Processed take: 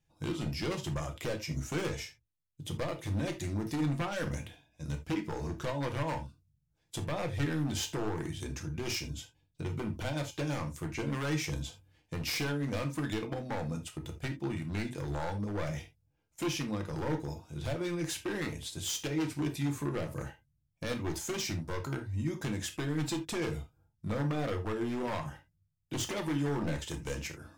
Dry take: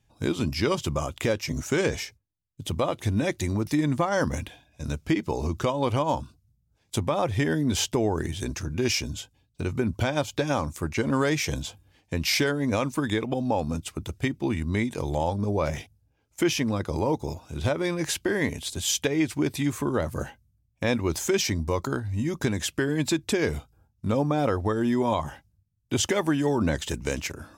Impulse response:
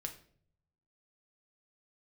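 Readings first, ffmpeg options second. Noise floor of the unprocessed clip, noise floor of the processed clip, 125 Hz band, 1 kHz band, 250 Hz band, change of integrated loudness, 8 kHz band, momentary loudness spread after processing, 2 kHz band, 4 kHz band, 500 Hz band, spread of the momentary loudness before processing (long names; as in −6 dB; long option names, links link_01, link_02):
−70 dBFS, −77 dBFS, −6.0 dB, −10.0 dB, −8.5 dB, −8.5 dB, −9.0 dB, 9 LU, −9.0 dB, −8.5 dB, −10.5 dB, 9 LU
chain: -filter_complex "[0:a]aeval=exprs='0.1*(abs(mod(val(0)/0.1+3,4)-2)-1)':channel_layout=same[link_01];[1:a]atrim=start_sample=2205,atrim=end_sample=3969[link_02];[link_01][link_02]afir=irnorm=-1:irlink=0,volume=-6dB"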